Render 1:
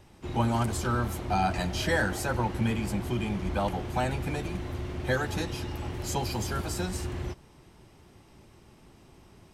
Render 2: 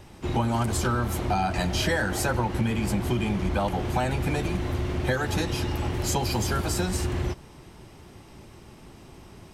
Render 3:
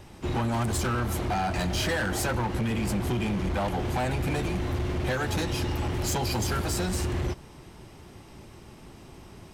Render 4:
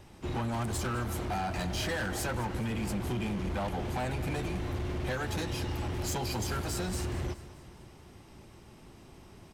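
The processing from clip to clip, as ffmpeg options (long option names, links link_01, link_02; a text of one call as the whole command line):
ffmpeg -i in.wav -af "acompressor=threshold=-29dB:ratio=6,volume=7.5dB" out.wav
ffmpeg -i in.wav -af "asoftclip=type=hard:threshold=-23.5dB" out.wav
ffmpeg -i in.wav -af "aecho=1:1:210|420|630|840|1050:0.15|0.0808|0.0436|0.0236|0.0127,volume=-5.5dB" out.wav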